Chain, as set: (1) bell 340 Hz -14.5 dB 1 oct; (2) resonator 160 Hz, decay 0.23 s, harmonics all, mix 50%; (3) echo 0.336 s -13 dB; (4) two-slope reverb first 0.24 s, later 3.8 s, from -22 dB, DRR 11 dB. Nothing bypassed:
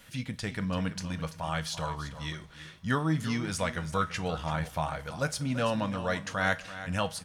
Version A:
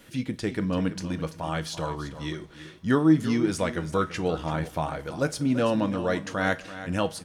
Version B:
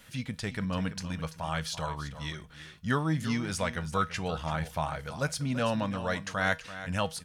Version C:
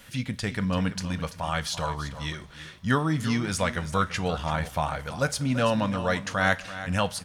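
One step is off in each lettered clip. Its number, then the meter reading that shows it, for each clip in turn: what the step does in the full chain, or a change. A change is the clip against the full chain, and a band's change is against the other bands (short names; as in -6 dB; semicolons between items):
1, 250 Hz band +7.0 dB; 4, echo-to-direct -9.0 dB to -13.0 dB; 2, loudness change +4.5 LU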